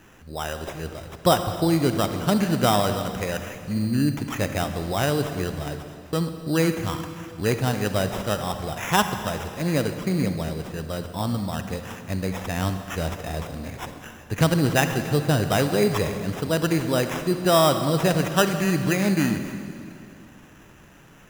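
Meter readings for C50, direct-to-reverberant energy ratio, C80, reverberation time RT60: 8.0 dB, 7.5 dB, 9.0 dB, 2.5 s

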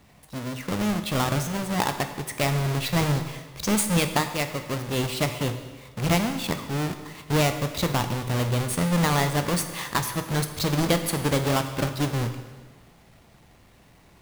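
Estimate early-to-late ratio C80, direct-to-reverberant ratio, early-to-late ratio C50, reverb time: 10.5 dB, 7.5 dB, 9.5 dB, 1.4 s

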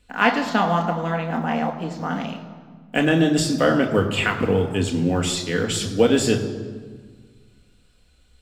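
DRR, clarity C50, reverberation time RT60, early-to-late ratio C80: 3.0 dB, 9.5 dB, 1.6 s, 10.5 dB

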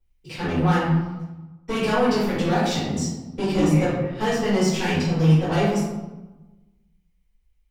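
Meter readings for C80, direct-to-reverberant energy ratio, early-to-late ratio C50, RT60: 3.0 dB, -15.0 dB, -0.5 dB, 1.1 s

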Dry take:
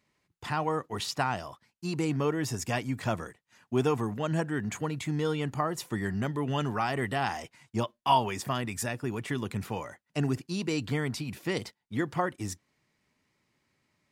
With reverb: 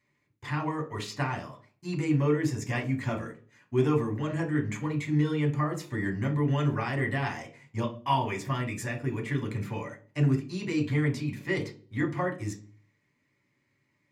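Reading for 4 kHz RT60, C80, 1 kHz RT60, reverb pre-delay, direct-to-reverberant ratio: 0.35 s, 18.0 dB, 0.35 s, 3 ms, 0.5 dB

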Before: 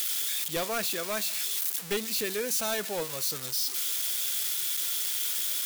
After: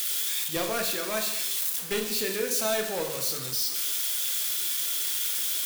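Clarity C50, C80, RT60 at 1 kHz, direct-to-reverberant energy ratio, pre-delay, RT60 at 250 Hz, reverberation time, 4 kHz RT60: 7.0 dB, 9.5 dB, 0.85 s, 2.5 dB, 7 ms, 0.90 s, 0.85 s, 0.70 s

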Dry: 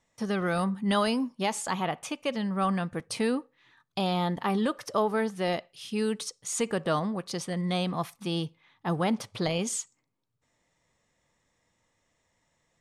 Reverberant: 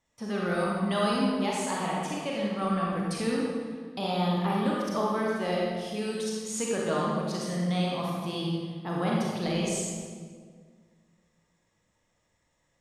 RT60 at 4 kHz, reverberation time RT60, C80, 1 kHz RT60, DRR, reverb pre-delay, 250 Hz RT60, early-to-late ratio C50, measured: 1.2 s, 1.8 s, 0.5 dB, 1.6 s, -4.0 dB, 32 ms, 2.2 s, -2.5 dB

